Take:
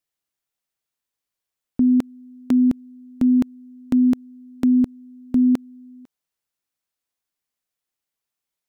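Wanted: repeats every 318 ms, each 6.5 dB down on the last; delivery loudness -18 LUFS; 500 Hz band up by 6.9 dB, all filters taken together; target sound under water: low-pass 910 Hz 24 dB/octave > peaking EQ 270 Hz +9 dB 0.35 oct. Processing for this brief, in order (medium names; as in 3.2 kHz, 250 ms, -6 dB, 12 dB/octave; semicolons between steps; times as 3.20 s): low-pass 910 Hz 24 dB/octave; peaking EQ 270 Hz +9 dB 0.35 oct; peaking EQ 500 Hz +8 dB; feedback delay 318 ms, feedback 47%, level -6.5 dB; trim -5 dB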